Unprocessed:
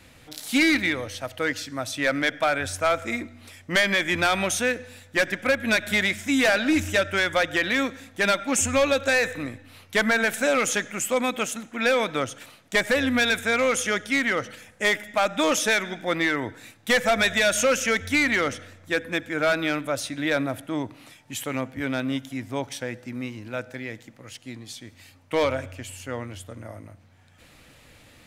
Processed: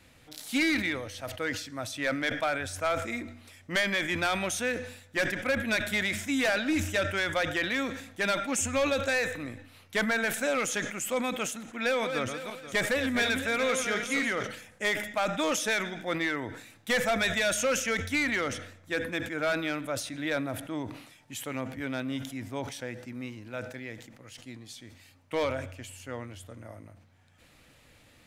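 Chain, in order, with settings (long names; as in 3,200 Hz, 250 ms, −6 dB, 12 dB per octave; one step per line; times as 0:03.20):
0:11.78–0:14.47: feedback delay that plays each chunk backwards 241 ms, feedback 41%, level −6.5 dB
level that may fall only so fast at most 78 dB per second
level −6.5 dB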